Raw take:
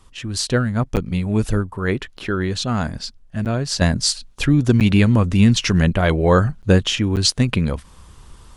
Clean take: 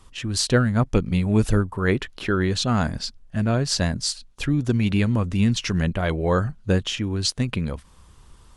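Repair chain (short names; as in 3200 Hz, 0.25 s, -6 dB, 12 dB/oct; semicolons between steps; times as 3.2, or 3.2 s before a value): interpolate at 0.96/2.17/3.45/4.8/6.62/7.16, 8.5 ms; gain correction -6.5 dB, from 3.81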